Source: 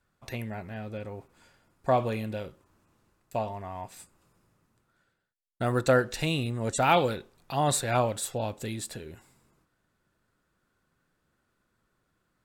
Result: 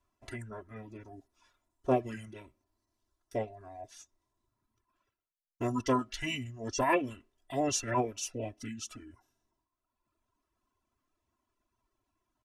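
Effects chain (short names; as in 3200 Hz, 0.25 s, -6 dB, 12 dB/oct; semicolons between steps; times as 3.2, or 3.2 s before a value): reverb removal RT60 1.4 s; comb 3 ms, depth 87%; formant shift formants -5 st; gain -6 dB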